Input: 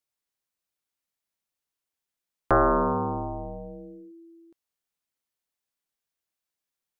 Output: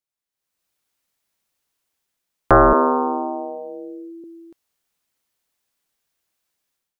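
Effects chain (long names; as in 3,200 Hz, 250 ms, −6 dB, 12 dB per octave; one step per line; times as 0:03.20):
0:02.73–0:04.24: Chebyshev high-pass filter 250 Hz, order 6
automatic gain control gain up to 15 dB
level −4 dB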